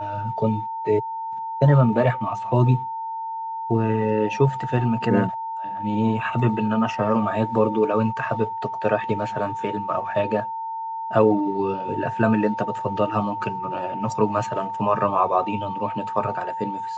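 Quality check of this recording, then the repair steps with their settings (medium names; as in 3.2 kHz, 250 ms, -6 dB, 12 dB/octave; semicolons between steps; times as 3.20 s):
whine 900 Hz -27 dBFS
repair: band-stop 900 Hz, Q 30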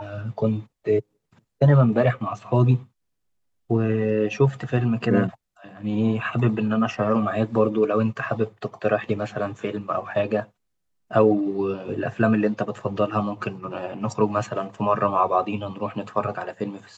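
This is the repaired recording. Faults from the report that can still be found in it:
nothing left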